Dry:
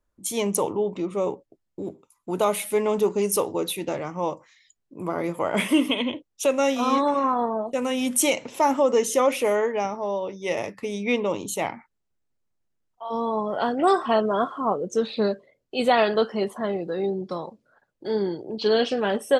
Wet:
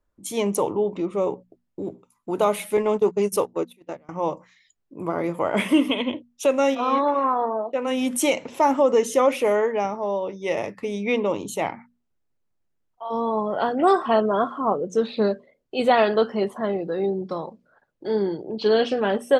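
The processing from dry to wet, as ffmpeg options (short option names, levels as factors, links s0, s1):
-filter_complex "[0:a]asettb=1/sr,asplit=3[s0][s1][s2];[s0]atrim=end=2.774[s3];[s1]atrim=start=2.77:end=4.09,asetpts=PTS-STARTPTS,afade=t=in:d=0.004:c=qsin,afade=t=out:st=1.316:d=0.004:c=qsin,agate=range=0.0398:threshold=0.0501:ratio=16:release=100:detection=peak[s4];[s2]atrim=start=4.086[s5];[s3][s4]acrossfade=d=0.004:c1=hsin:c2=qsin[s6];[s6][s5]acrossfade=d=0.004:c1=qsin:c2=hsin,asplit=3[s7][s8][s9];[s7]afade=t=out:st=6.74:d=0.02[s10];[s8]highpass=310,lowpass=3500,afade=t=in:st=6.74:d=0.02,afade=t=out:st=7.86:d=0.02[s11];[s9]afade=t=in:st=7.86:d=0.02[s12];[s10][s11][s12]amix=inputs=3:normalize=0,highshelf=f=3600:g=-7.5,bandreject=f=60:t=h:w=6,bandreject=f=120:t=h:w=6,bandreject=f=180:t=h:w=6,bandreject=f=240:t=h:w=6,volume=1.26"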